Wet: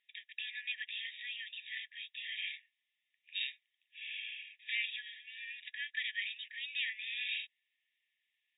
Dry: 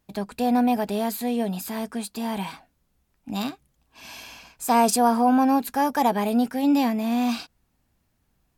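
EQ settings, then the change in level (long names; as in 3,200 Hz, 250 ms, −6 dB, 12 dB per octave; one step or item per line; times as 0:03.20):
linear-phase brick-wall band-pass 1,700–3,800 Hz
+1.5 dB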